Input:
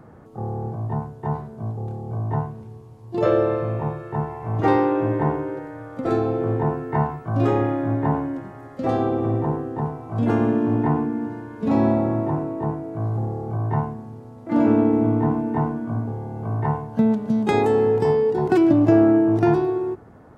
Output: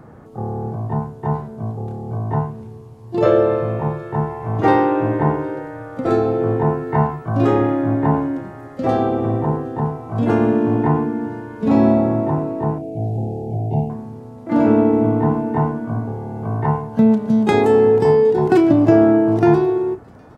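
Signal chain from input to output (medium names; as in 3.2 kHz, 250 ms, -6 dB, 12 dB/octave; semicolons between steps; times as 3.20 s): 12.78–13.90 s: elliptic band-stop 760–2500 Hz, stop band 40 dB; doubling 32 ms -12 dB; feedback echo behind a high-pass 763 ms, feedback 46%, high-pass 3.7 kHz, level -21 dB; trim +4 dB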